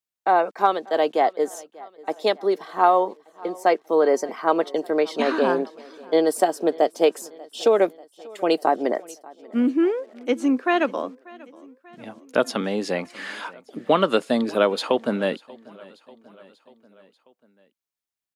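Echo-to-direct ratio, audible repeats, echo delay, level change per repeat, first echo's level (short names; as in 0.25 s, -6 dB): -21.0 dB, 3, 0.589 s, -4.5 dB, -23.0 dB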